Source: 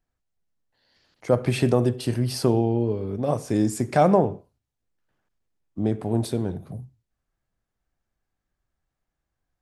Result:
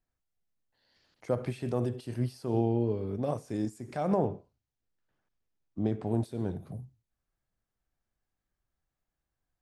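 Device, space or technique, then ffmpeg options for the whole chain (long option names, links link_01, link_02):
de-esser from a sidechain: -filter_complex "[0:a]asplit=2[link_01][link_02];[link_02]highpass=5100,apad=whole_len=424162[link_03];[link_01][link_03]sidechaincompress=threshold=-54dB:ratio=3:attack=4.5:release=94,asettb=1/sr,asplit=3[link_04][link_05][link_06];[link_04]atrim=end=4.274[link_07];[link_05]atrim=start=4.27:end=6.07,asetpts=PTS-STARTPTS,afade=type=in:duration=0.004:curve=qsin,afade=type=out:start_time=1.796:duration=0.004:curve=qsin,lowpass=frequency=7000:width=0.5412,lowpass=frequency=7000:width=1.3066[link_08];[link_06]atrim=start=6.066[link_09];[link_07][link_08]acrossfade=duration=0.004:curve1=hsin:curve2=qsin[link_10];[link_10][link_09]acrossfade=duration=0.004:curve1=qsin:curve2=hsin,volume=-5dB"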